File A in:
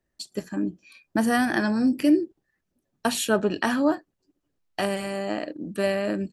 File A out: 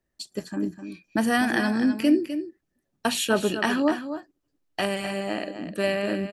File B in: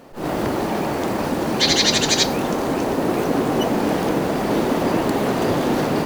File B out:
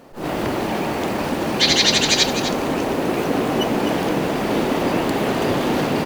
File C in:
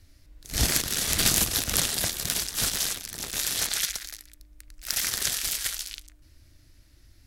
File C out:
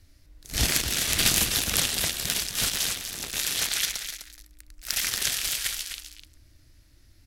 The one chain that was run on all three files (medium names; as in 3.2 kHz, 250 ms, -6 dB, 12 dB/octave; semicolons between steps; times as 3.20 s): dynamic bell 2.7 kHz, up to +5 dB, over -42 dBFS, Q 1.3; delay 254 ms -10 dB; trim -1 dB